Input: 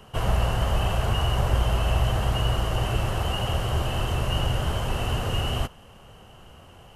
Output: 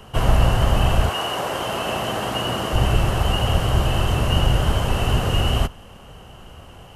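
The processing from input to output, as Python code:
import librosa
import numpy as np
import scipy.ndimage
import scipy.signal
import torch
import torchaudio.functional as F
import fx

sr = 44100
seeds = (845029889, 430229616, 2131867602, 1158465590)

y = fx.octave_divider(x, sr, octaves=1, level_db=-3.0)
y = fx.highpass(y, sr, hz=fx.line((1.08, 420.0), (2.72, 180.0)), slope=12, at=(1.08, 2.72), fade=0.02)
y = y * librosa.db_to_amplitude(5.5)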